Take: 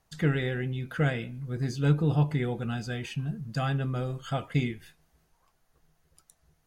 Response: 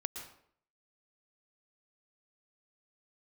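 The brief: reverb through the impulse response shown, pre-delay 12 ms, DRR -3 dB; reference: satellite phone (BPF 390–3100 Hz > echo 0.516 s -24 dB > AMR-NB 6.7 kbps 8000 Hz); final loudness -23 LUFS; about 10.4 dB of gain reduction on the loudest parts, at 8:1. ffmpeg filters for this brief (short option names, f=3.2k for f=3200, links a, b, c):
-filter_complex "[0:a]acompressor=threshold=-29dB:ratio=8,asplit=2[a][b];[1:a]atrim=start_sample=2205,adelay=12[c];[b][c]afir=irnorm=-1:irlink=0,volume=3dB[d];[a][d]amix=inputs=2:normalize=0,highpass=390,lowpass=3.1k,aecho=1:1:516:0.0631,volume=16dB" -ar 8000 -c:a libopencore_amrnb -b:a 6700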